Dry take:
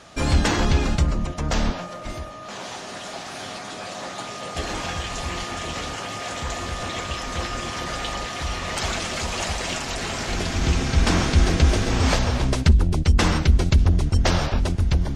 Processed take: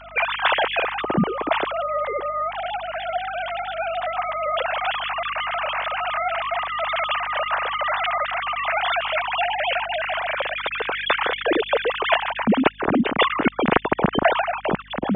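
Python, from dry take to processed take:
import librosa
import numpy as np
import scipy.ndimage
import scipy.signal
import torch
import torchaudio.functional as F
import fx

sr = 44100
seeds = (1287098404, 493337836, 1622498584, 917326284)

y = fx.sine_speech(x, sr)
y = fx.add_hum(y, sr, base_hz=50, snr_db=27)
y = F.gain(torch.from_numpy(y), -1.5).numpy()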